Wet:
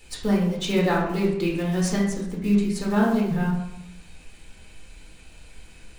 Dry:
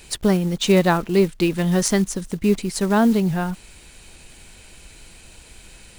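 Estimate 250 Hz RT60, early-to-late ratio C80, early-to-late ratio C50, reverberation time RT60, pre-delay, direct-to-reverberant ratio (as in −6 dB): 1.0 s, 6.5 dB, 3.5 dB, 0.85 s, 4 ms, −5.0 dB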